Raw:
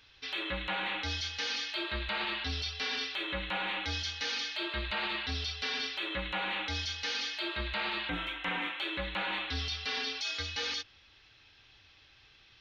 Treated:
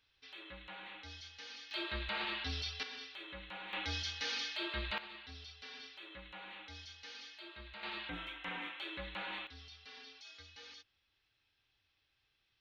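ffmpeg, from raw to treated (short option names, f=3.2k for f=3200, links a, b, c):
-af "asetnsamples=n=441:p=0,asendcmd='1.71 volume volume -4.5dB;2.83 volume volume -13dB;3.73 volume volume -4dB;4.98 volume volume -16dB;7.83 volume volume -8.5dB;9.47 volume volume -19dB',volume=-15.5dB"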